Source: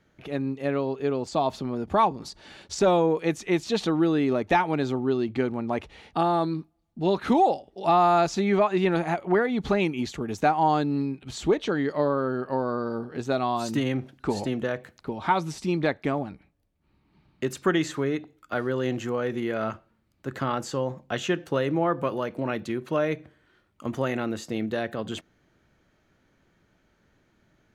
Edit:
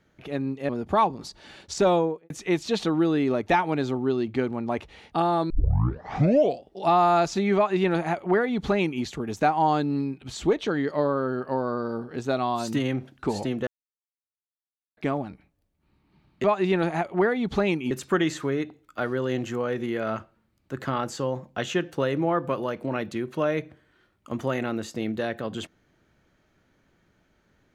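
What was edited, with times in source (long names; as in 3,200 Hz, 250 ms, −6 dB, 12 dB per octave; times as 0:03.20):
0:00.69–0:01.70: remove
0:02.94–0:03.31: fade out and dull
0:06.51: tape start 1.15 s
0:08.57–0:10.04: duplicate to 0:17.45
0:14.68–0:15.98: silence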